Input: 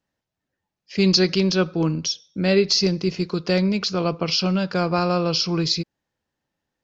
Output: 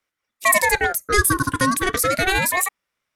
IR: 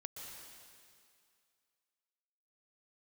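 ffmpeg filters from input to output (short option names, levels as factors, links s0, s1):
-af "asetrate=95697,aresample=44100,aeval=exprs='val(0)*sin(2*PI*1200*n/s+1200*0.45/0.32*sin(2*PI*0.32*n/s))':c=same,volume=1.68"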